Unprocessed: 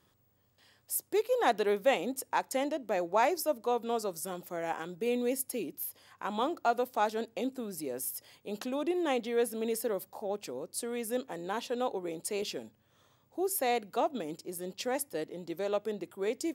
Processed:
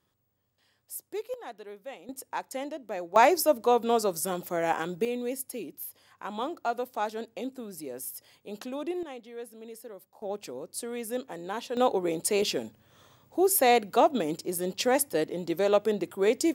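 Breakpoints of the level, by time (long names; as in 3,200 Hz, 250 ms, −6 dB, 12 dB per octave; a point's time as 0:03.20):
−6 dB
from 0:01.34 −15 dB
from 0:02.09 −3.5 dB
from 0:03.16 +7.5 dB
from 0:05.05 −1.5 dB
from 0:09.03 −11.5 dB
from 0:10.22 +0.5 dB
from 0:11.77 +8.5 dB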